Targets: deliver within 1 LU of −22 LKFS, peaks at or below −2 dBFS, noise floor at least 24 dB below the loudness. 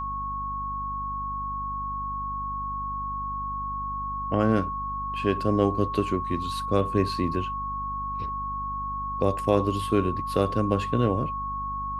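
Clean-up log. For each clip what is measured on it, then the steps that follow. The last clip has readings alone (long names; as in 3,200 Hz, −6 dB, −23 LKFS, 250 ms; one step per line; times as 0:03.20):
mains hum 50 Hz; hum harmonics up to 250 Hz; level of the hum −36 dBFS; interfering tone 1,100 Hz; level of the tone −29 dBFS; integrated loudness −27.5 LKFS; sample peak −6.5 dBFS; target loudness −22.0 LKFS
→ mains-hum notches 50/100/150/200/250 Hz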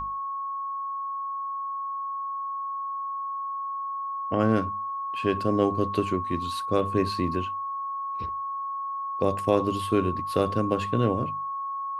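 mains hum none found; interfering tone 1,100 Hz; level of the tone −29 dBFS
→ notch filter 1,100 Hz, Q 30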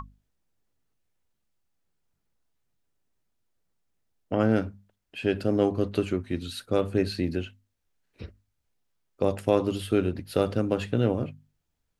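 interfering tone none found; integrated loudness −27.5 LKFS; sample peak −8.5 dBFS; target loudness −22.0 LKFS
→ level +5.5 dB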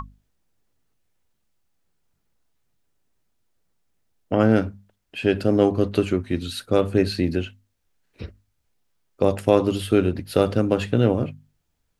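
integrated loudness −22.0 LKFS; sample peak −3.0 dBFS; background noise floor −73 dBFS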